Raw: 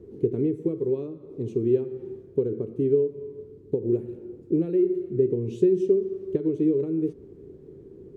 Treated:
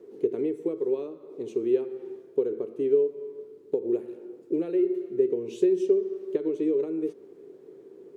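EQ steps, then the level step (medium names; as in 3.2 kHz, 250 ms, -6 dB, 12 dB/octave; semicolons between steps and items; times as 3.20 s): high-pass 520 Hz 12 dB/octave; +5.0 dB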